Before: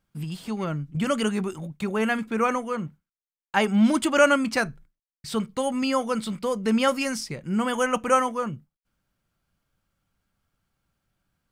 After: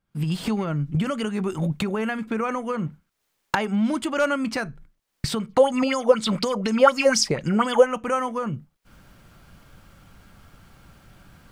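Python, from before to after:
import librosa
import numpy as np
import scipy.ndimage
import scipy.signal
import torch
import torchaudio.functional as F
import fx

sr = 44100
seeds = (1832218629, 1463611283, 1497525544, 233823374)

y = fx.recorder_agc(x, sr, target_db=-13.0, rise_db_per_s=52.0, max_gain_db=30)
y = fx.high_shelf(y, sr, hz=4300.0, db=-6.0)
y = np.clip(10.0 ** (8.5 / 20.0) * y, -1.0, 1.0) / 10.0 ** (8.5 / 20.0)
y = fx.bell_lfo(y, sr, hz=4.1, low_hz=500.0, high_hz=7200.0, db=17, at=(5.49, 7.83), fade=0.02)
y = y * 10.0 ** (-4.0 / 20.0)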